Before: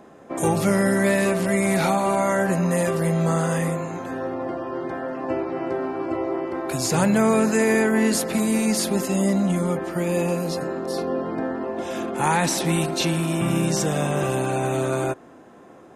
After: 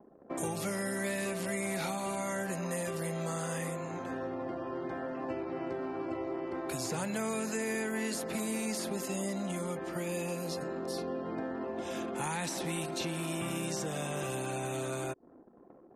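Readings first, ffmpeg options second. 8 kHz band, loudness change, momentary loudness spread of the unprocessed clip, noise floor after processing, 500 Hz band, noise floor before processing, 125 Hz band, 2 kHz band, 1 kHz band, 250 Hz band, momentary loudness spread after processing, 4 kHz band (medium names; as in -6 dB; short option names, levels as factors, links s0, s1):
-10.0 dB, -13.0 dB, 10 LU, -57 dBFS, -13.0 dB, -47 dBFS, -15.0 dB, -11.5 dB, -13.0 dB, -14.0 dB, 4 LU, -10.5 dB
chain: -filter_complex "[0:a]acrossover=split=290|2300[s0][s1][s2];[s0]acompressor=threshold=0.0178:ratio=4[s3];[s1]acompressor=threshold=0.0282:ratio=4[s4];[s2]acompressor=threshold=0.0224:ratio=4[s5];[s3][s4][s5]amix=inputs=3:normalize=0,anlmdn=0.1,volume=0.501"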